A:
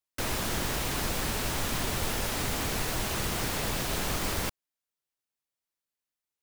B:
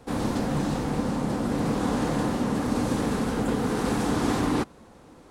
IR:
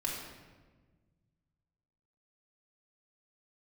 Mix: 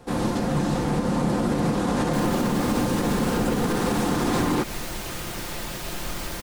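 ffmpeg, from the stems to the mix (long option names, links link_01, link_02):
-filter_complex "[0:a]adelay=1950,volume=-8.5dB,asplit=2[link_01][link_02];[link_02]volume=-8.5dB[link_03];[1:a]volume=2.5dB[link_04];[2:a]atrim=start_sample=2205[link_05];[link_03][link_05]afir=irnorm=-1:irlink=0[link_06];[link_01][link_04][link_06]amix=inputs=3:normalize=0,aecho=1:1:5.7:0.31,dynaudnorm=framelen=200:gausssize=11:maxgain=3.5dB,alimiter=limit=-14dB:level=0:latency=1:release=96"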